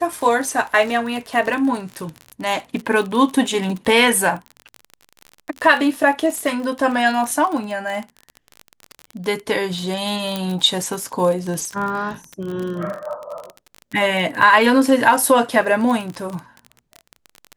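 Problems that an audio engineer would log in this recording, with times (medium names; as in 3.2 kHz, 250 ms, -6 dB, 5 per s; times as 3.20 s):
crackle 36 per s -24 dBFS
10.36 s: pop
14.42 s: dropout 3.3 ms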